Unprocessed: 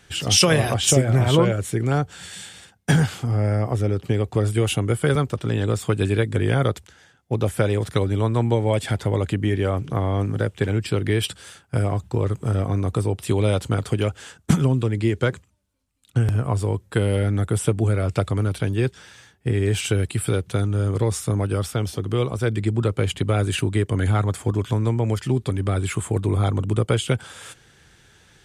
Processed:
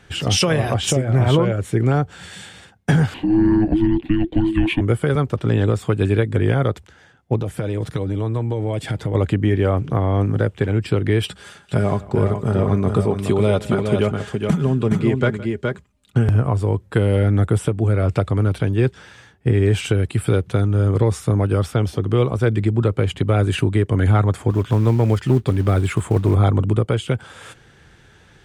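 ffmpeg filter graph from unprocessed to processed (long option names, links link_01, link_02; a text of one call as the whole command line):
ffmpeg -i in.wav -filter_complex "[0:a]asettb=1/sr,asplit=3[link_01][link_02][link_03];[link_01]atrim=end=3.144[link_04];[link_02]atrim=start=3.14:end=4.81,asetpts=PTS-STARTPTS,afade=type=in:duration=0.004:curve=qsin,afade=type=out:start_time=1.666:duration=0.004:curve=qsin,highshelf=frequency=5000:width_type=q:width=3:gain=-9.5,bandreject=frequency=1700:width=5.8,afreqshift=-430[link_05];[link_03]atrim=start=4.806[link_06];[link_04][link_05]acrossfade=duration=0.004:curve1=hsin:curve2=qsin[link_07];[link_07][link_06]acrossfade=duration=0.004:curve1=qsin:curve2=hsin,asettb=1/sr,asplit=3[link_08][link_09][link_10];[link_08]atrim=end=7.404[link_11];[link_09]atrim=start=7.4:end=9.15,asetpts=PTS-STARTPTS,afade=type=in:duration=0.004:curve=qsin,afade=type=out:start_time=1.746:duration=0.004:curve=qsin,equalizer=frequency=1100:width=0.56:gain=-4.5,aecho=1:1:6.4:0.31,atrim=end_sample=77175,acompressor=threshold=-23dB:ratio=10:attack=3.2:release=140:knee=1:detection=peak[link_12];[link_10]atrim=start=9.146[link_13];[link_11][link_12]acrossfade=duration=0.004:curve1=hsin:curve2=qsin[link_14];[link_14][link_13]acrossfade=duration=0.004:curve1=qsin:curve2=hsin,asettb=1/sr,asplit=3[link_15][link_16][link_17];[link_15]atrim=end=11.274[link_18];[link_16]atrim=start=11.27:end=16.28,asetpts=PTS-STARTPTS,afade=type=in:duration=0.004:curve=qsin,afade=type=out:start_time=5.006:duration=0.004:curve=qsin,aecho=1:1:4.9:0.42,atrim=end_sample=220941,aecho=1:1:164|418:0.106|0.501,atrim=end_sample=220941[link_19];[link_17]atrim=start=16.276[link_20];[link_18][link_19]acrossfade=duration=0.004:curve1=hsin:curve2=qsin[link_21];[link_21][link_20]acrossfade=duration=0.004:curve1=qsin:curve2=hsin,asettb=1/sr,asplit=3[link_22][link_23][link_24];[link_22]atrim=end=24.504[link_25];[link_23]atrim=start=24.5:end=26.35,asetpts=PTS-STARTPTS,afade=type=in:duration=0.004:curve=qsin,afade=type=out:start_time=1.846:duration=0.004:curve=qsin,asoftclip=type=hard:threshold=-13dB,acrusher=bits=6:mode=log:mix=0:aa=0.000001[link_26];[link_24]atrim=start=26.346[link_27];[link_25][link_26]acrossfade=duration=0.004:curve1=hsin:curve2=qsin[link_28];[link_28][link_27]acrossfade=duration=0.004:curve1=qsin:curve2=hsin,highshelf=frequency=3600:gain=-11.5,alimiter=limit=-12dB:level=0:latency=1:release=443,volume=5.5dB" out.wav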